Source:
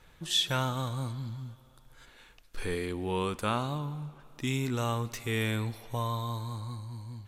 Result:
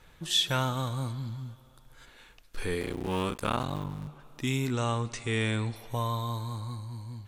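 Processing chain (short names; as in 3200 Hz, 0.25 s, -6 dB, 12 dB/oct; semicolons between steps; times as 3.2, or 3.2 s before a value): 2.81–4.08 cycle switcher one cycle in 3, muted; 4.72–5.76 brick-wall FIR low-pass 9800 Hz; gain +1.5 dB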